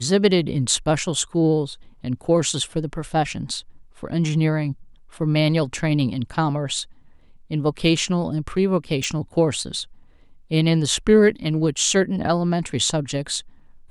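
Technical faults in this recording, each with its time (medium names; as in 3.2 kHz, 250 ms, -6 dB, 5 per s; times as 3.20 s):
9.04 s: pop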